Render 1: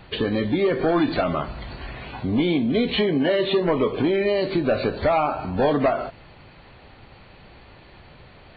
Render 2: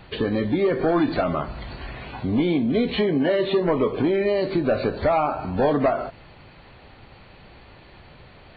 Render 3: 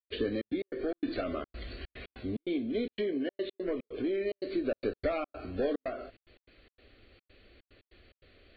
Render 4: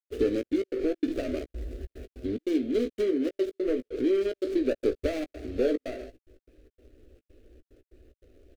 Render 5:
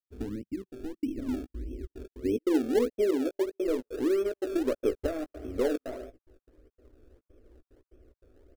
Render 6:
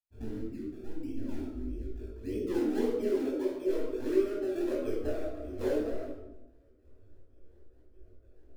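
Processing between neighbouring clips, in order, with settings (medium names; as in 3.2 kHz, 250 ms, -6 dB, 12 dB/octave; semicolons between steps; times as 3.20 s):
dynamic bell 3.2 kHz, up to -5 dB, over -42 dBFS, Q 1.2
static phaser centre 370 Hz, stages 4; gain riding within 4 dB 0.5 s; trance gate ".xxx.x.xx.xxxx" 146 bpm -60 dB; trim -8 dB
median filter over 41 samples; static phaser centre 390 Hz, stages 4; doubling 16 ms -10.5 dB; trim +7.5 dB
low-pass sweep 180 Hz -> 1.2 kHz, 0.82–4.00 s; in parallel at -10 dB: decimation with a swept rate 30×, swing 100% 1.6 Hz; on the sum: trim -4.5 dB
reverberation RT60 0.95 s, pre-delay 18 ms, DRR -3 dB; detune thickener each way 17 cents; trim -7.5 dB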